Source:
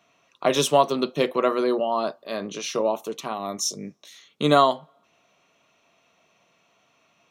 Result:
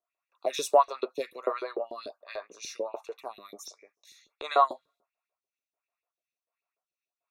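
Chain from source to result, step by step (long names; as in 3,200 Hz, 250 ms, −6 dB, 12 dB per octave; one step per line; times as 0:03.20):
noise gate with hold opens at −50 dBFS
0:03.66–0:04.51: low-shelf EQ 310 Hz −10.5 dB
auto-filter high-pass saw up 6.8 Hz 360–3,300 Hz
Butterworth band-reject 3,100 Hz, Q 5
phaser with staggered stages 1.4 Hz
level −7.5 dB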